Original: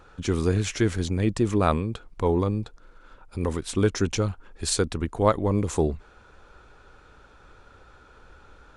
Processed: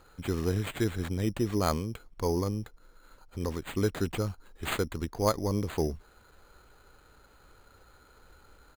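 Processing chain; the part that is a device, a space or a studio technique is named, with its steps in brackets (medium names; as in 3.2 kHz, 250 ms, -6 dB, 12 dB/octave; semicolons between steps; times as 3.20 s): crushed at another speed (playback speed 0.8×; sample-and-hold 10×; playback speed 1.25×); trim -6 dB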